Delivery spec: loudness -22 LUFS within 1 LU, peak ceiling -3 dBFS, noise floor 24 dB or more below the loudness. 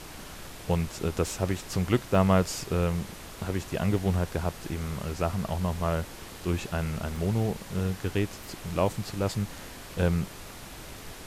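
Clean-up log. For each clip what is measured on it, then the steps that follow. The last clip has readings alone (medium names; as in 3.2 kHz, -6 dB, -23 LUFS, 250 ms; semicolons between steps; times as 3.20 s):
dropouts 4; longest dropout 2.0 ms; noise floor -44 dBFS; noise floor target -54 dBFS; loudness -29.5 LUFS; peak level -11.0 dBFS; loudness target -22.0 LUFS
-> interpolate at 2.15/3.98/7.16/7.79 s, 2 ms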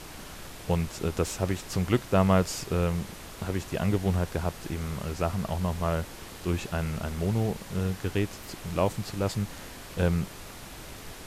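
dropouts 0; noise floor -44 dBFS; noise floor target -54 dBFS
-> noise print and reduce 10 dB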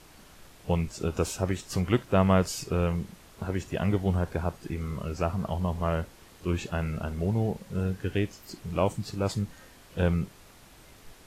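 noise floor -54 dBFS; loudness -29.5 LUFS; peak level -11.0 dBFS; loudness target -22.0 LUFS
-> trim +7.5 dB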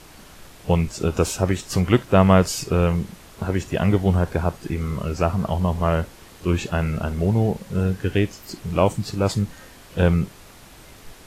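loudness -22.0 LUFS; peak level -3.5 dBFS; noise floor -46 dBFS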